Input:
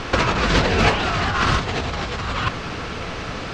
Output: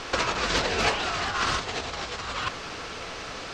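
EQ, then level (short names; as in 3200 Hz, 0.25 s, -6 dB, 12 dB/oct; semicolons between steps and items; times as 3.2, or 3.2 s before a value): tone controls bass -14 dB, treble +7 dB; low shelf 120 Hz +8 dB; -6.5 dB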